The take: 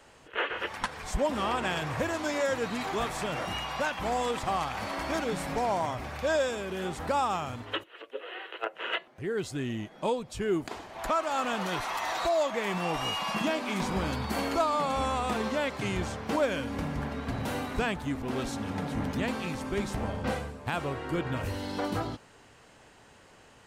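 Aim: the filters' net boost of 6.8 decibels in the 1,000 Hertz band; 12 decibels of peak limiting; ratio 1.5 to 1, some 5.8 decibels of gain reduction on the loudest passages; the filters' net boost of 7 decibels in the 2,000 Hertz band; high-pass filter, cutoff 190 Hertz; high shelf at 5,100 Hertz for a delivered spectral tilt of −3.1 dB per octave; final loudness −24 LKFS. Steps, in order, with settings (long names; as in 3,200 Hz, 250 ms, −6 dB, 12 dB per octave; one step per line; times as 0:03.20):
high-pass filter 190 Hz
parametric band 1,000 Hz +7 dB
parametric band 2,000 Hz +5.5 dB
high-shelf EQ 5,100 Hz +7.5 dB
downward compressor 1.5 to 1, threshold −33 dBFS
level +9.5 dB
brickwall limiter −14.5 dBFS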